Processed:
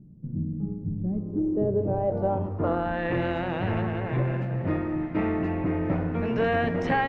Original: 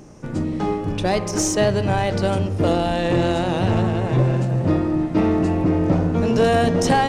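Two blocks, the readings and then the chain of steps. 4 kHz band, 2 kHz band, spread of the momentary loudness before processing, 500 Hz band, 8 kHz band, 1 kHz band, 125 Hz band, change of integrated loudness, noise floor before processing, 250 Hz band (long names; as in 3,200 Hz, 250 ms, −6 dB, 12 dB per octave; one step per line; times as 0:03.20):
−15.0 dB, −4.0 dB, 6 LU, −7.0 dB, below −35 dB, −7.5 dB, −8.0 dB, −7.5 dB, −28 dBFS, −7.5 dB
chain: low-pass filter sweep 180 Hz → 2,100 Hz, 0:00.97–0:03.15
far-end echo of a speakerphone 200 ms, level −27 dB
level −8.5 dB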